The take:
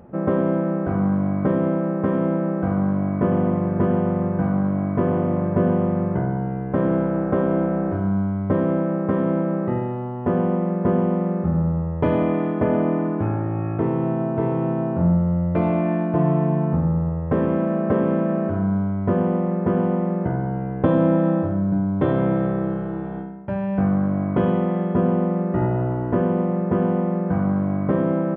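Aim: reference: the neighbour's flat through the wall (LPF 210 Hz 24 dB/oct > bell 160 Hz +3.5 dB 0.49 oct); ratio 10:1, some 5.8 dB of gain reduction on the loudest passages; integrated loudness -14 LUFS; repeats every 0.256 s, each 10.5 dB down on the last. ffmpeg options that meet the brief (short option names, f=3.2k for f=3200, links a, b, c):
-af "acompressor=threshold=-20dB:ratio=10,lowpass=f=210:w=0.5412,lowpass=f=210:w=1.3066,equalizer=f=160:t=o:w=0.49:g=3.5,aecho=1:1:256|512|768:0.299|0.0896|0.0269,volume=12dB"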